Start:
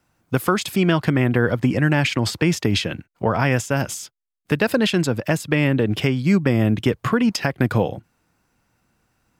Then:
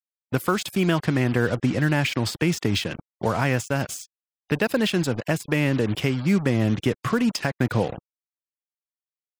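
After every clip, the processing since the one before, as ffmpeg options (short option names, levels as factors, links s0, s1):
-af "acrusher=bits=4:mix=0:aa=0.5,afftfilt=real='re*gte(hypot(re,im),0.00891)':imag='im*gte(hypot(re,im),0.00891)':win_size=1024:overlap=0.75,volume=0.668"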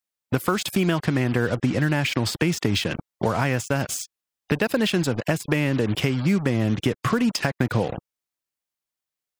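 -af "acompressor=threshold=0.0355:ratio=2.5,volume=2.37"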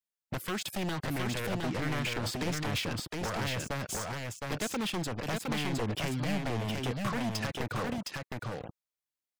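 -af "aeval=exprs='0.112*(abs(mod(val(0)/0.112+3,4)-2)-1)':c=same,aecho=1:1:713:0.708,volume=0.376"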